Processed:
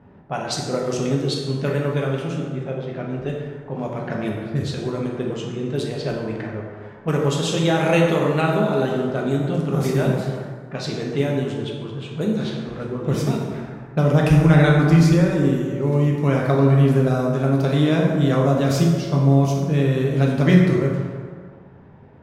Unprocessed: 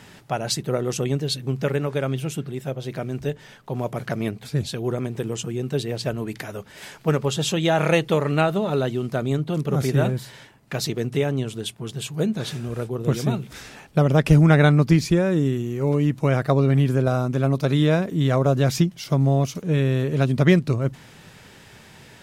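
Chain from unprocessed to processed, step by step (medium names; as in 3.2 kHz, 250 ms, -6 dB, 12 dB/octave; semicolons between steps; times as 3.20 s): level-controlled noise filter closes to 730 Hz, open at -18.5 dBFS; plate-style reverb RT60 1.8 s, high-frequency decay 0.5×, DRR -2 dB; trim -2.5 dB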